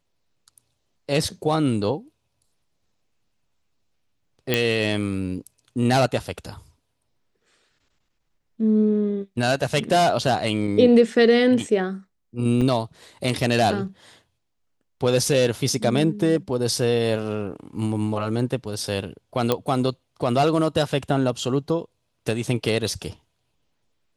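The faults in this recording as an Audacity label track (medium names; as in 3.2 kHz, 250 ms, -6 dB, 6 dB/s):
4.540000	4.540000	pop -5 dBFS
12.610000	12.620000	dropout 5.6 ms
19.520000	19.520000	pop -7 dBFS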